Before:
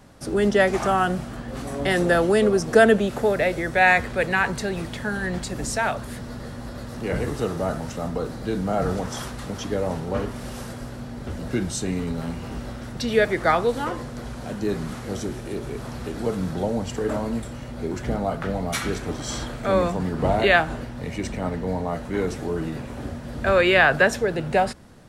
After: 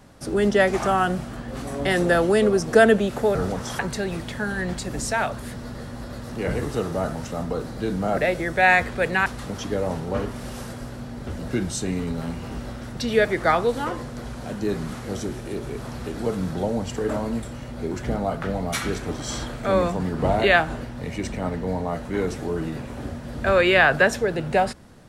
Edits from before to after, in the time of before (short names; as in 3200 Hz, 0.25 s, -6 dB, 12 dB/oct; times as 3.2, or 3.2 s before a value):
3.35–4.44 swap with 8.82–9.26